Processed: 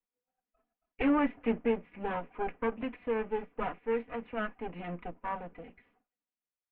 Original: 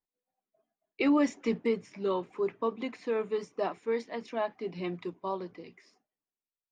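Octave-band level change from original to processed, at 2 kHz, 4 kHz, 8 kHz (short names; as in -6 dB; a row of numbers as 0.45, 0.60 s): +1.0 dB, -6.0 dB, n/a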